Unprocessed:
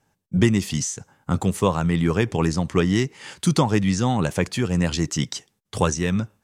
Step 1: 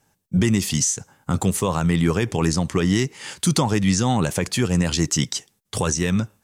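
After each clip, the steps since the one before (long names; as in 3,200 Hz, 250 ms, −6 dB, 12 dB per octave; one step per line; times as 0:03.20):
high-shelf EQ 5,200 Hz +8 dB
brickwall limiter −11 dBFS, peak gain reduction 7 dB
level +2 dB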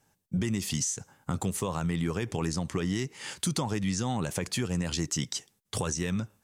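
downward compressor 2.5 to 1, threshold −24 dBFS, peak gain reduction 7 dB
level −4.5 dB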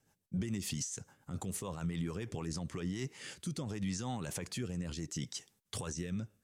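brickwall limiter −25 dBFS, peak gain reduction 10 dB
rotating-speaker cabinet horn 7 Hz, later 0.7 Hz, at 0:02.33
level −2.5 dB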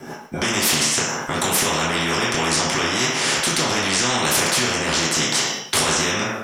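convolution reverb RT60 0.60 s, pre-delay 3 ms, DRR −9.5 dB
every bin compressed towards the loudest bin 4 to 1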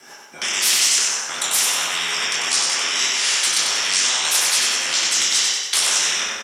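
resonant band-pass 5,900 Hz, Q 0.52
on a send: repeating echo 94 ms, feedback 50%, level −4 dB
on the sum: level +2.5 dB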